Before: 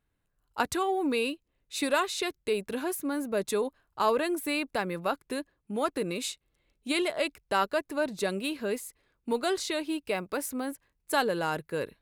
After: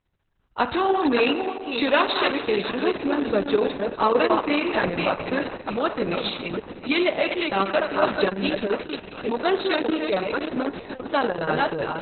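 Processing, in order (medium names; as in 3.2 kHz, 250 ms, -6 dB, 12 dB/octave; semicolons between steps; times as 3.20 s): chunks repeated in reverse 300 ms, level -5 dB; low-pass 8.6 kHz 24 dB/octave; 5.80–7.05 s: dynamic bell 880 Hz, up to -4 dB, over -44 dBFS, Q 1.3; in parallel at -8.5 dB: one-sided clip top -24.5 dBFS, bottom -18.5 dBFS; on the sum: shuffle delay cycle 1163 ms, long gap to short 1.5:1, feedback 45%, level -16 dB; spring tank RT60 1.6 s, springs 41 ms, chirp 80 ms, DRR 9.5 dB; trim +4 dB; Opus 6 kbps 48 kHz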